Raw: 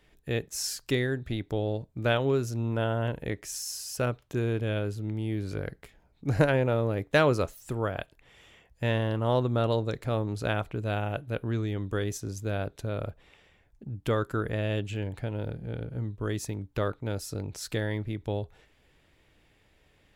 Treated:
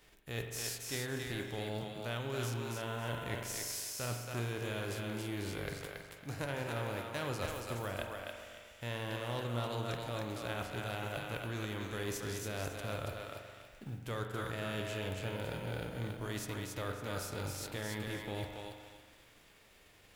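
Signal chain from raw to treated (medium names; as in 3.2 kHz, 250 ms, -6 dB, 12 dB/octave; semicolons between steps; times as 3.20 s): formants flattened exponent 0.6; reverse; compression 5:1, threshold -37 dBFS, peak gain reduction 18.5 dB; reverse; thinning echo 278 ms, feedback 28%, high-pass 400 Hz, level -3 dB; spring tank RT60 1.6 s, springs 42 ms, chirp 45 ms, DRR 4.5 dB; trim -1 dB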